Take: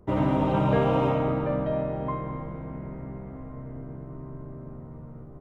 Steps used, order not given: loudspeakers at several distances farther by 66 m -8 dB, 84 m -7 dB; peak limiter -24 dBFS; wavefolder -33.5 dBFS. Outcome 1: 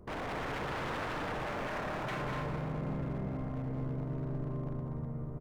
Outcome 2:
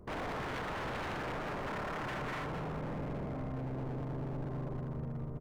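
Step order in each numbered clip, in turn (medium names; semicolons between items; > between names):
peak limiter > wavefolder > loudspeakers at several distances; loudspeakers at several distances > peak limiter > wavefolder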